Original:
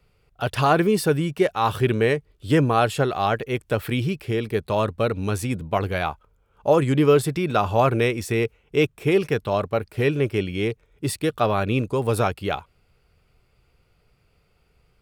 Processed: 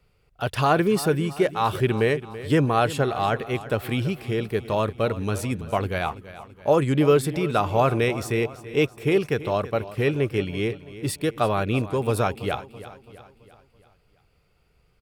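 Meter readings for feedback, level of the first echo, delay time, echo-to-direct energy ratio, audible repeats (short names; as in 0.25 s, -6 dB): 50%, -15.5 dB, 0.332 s, -14.5 dB, 4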